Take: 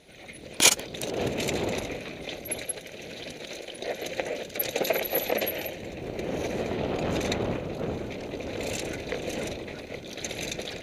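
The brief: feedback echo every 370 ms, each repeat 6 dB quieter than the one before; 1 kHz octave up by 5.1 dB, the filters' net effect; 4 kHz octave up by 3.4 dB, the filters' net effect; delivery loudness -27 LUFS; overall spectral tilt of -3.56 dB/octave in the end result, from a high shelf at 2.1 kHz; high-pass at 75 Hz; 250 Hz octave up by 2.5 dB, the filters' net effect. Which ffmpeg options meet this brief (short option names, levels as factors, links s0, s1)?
-af "highpass=75,equalizer=f=250:t=o:g=3,equalizer=f=1000:t=o:g=7.5,highshelf=f=2100:g=-3.5,equalizer=f=4000:t=o:g=7,aecho=1:1:370|740|1110|1480|1850|2220:0.501|0.251|0.125|0.0626|0.0313|0.0157"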